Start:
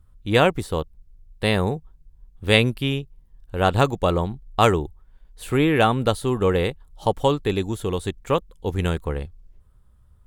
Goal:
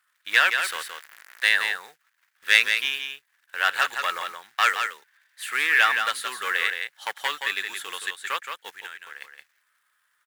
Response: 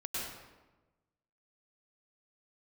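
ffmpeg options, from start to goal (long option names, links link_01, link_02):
-filter_complex "[0:a]asettb=1/sr,asplit=3[link_01][link_02][link_03];[link_01]atrim=end=0.644[link_04];[link_02]atrim=start=0.64:end=1.49,asetpts=PTS-STARTPTS,afade=type=in:duration=0.004:curve=qsin,afade=type=out:start_time=0.846:duration=0.004:curve=qsin,aeval=exprs='val(0)+0.5*0.0266*sgn(val(0))':channel_layout=same[link_05];[link_03]atrim=start=1.486[link_06];[link_04][link_05]acrossfade=duration=0.004:curve1=hsin:curve2=qsin[link_07];[link_07][link_06]acrossfade=duration=0.004:curve1=qsin:curve2=hsin,asplit=3[link_08][link_09][link_10];[link_08]afade=type=out:start_time=8.7:duration=0.02[link_11];[link_09]acompressor=threshold=-31dB:ratio=20,afade=type=in:start_time=8.7:duration=0.02,afade=type=out:start_time=9.2:duration=0.02[link_12];[link_10]afade=type=in:start_time=9.2:duration=0.02[link_13];[link_11][link_12][link_13]amix=inputs=3:normalize=0,asoftclip=type=tanh:threshold=-11.5dB,acrusher=bits=7:mode=log:mix=0:aa=0.000001,highpass=frequency=1700:width_type=q:width=3.8,asettb=1/sr,asplit=3[link_14][link_15][link_16];[link_14]atrim=end=4.694[link_17];[link_15]atrim=start=4.69:end=5.47,asetpts=PTS-STARTPTS,afade=type=in:duration=0.004:curve=qsin,afade=type=out:start_time=0.776:duration=0.004:curve=qsin,afreqshift=57[link_18];[link_16]atrim=start=5.466[link_19];[link_17][link_18]acrossfade=duration=0.004:curve1=hsin:curve2=qsin[link_20];[link_20][link_19]acrossfade=duration=0.004:curve1=qsin:curve2=hsin,aecho=1:1:171:0.473,volume=2dB"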